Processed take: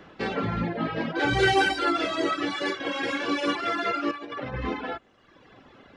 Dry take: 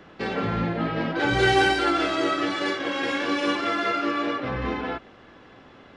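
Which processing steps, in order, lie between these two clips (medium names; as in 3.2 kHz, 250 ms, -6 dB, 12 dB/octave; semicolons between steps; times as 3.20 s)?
reverb removal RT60 1.1 s; 4.11–4.54 s: compressor with a negative ratio -34 dBFS, ratio -0.5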